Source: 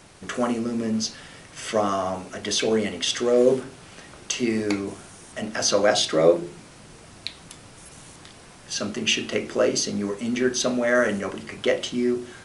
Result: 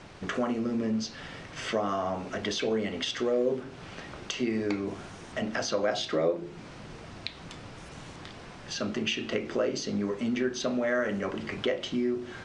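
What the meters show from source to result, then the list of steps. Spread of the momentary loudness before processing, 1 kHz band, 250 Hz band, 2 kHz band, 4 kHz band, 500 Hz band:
22 LU, -6.0 dB, -4.5 dB, -6.0 dB, -8.0 dB, -7.0 dB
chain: compression 2.5:1, threshold -32 dBFS, peak gain reduction 14 dB; distance through air 130 m; trim +3 dB

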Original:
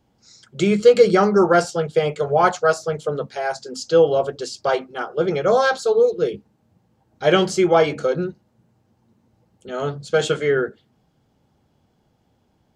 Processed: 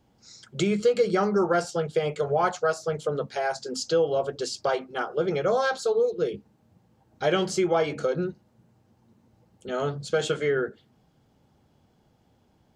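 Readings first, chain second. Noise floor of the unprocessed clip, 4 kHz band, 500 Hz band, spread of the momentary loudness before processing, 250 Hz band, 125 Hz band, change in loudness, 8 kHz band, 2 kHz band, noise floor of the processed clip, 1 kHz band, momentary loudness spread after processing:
-65 dBFS, -5.5 dB, -7.0 dB, 12 LU, -6.5 dB, -5.5 dB, -7.0 dB, -3.5 dB, -6.5 dB, -65 dBFS, -7.0 dB, 8 LU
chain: compression 2:1, threshold -26 dBFS, peak gain reduction 10.5 dB

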